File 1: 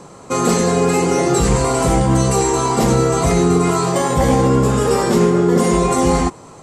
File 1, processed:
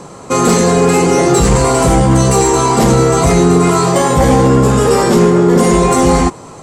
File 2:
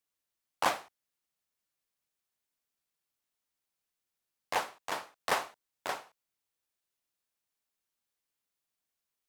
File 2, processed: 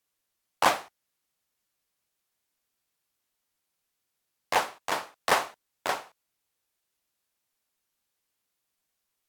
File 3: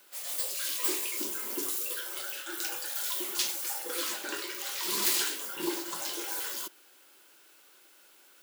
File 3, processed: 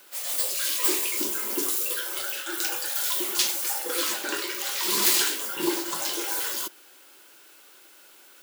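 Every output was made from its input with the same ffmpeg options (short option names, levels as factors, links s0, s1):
-af "acontrast=69" -ar 44100 -c:a libvorbis -b:a 128k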